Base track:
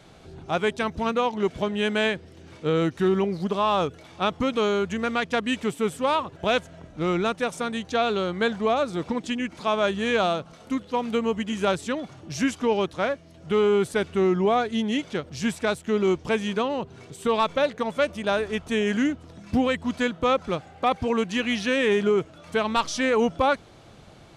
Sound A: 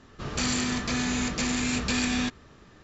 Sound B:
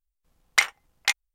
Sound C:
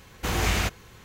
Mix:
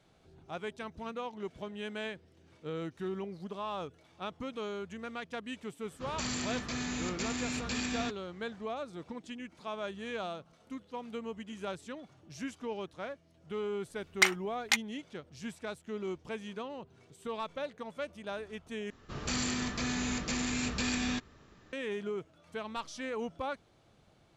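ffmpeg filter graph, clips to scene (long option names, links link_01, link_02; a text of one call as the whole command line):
ffmpeg -i bed.wav -i cue0.wav -i cue1.wav -filter_complex "[1:a]asplit=2[link_01][link_02];[0:a]volume=-15.5dB[link_03];[link_01]highpass=45[link_04];[link_03]asplit=2[link_05][link_06];[link_05]atrim=end=18.904[link_07];[link_02]atrim=end=2.83,asetpts=PTS-STARTPTS,volume=-6dB[link_08];[link_06]atrim=start=21.726[link_09];[link_04]atrim=end=2.83,asetpts=PTS-STARTPTS,volume=-8.5dB,afade=type=in:duration=0.004:curve=hsin,afade=type=out:start_time=2.826:duration=0.004:curve=hsin,adelay=256221S[link_10];[2:a]atrim=end=1.34,asetpts=PTS-STARTPTS,volume=-4.5dB,afade=type=in:duration=0.004:curve=hsin,afade=type=out:start_time=1.336:duration=0.004:curve=hsin,adelay=601524S[link_11];[link_07][link_08]acrossfade=duration=0.004:curve1=hsin:curve2=hsin[link_12];[link_12][link_09]acrossfade=duration=0.004:curve1=hsin:curve2=hsin[link_13];[link_13][link_10][link_11]amix=inputs=3:normalize=0" out.wav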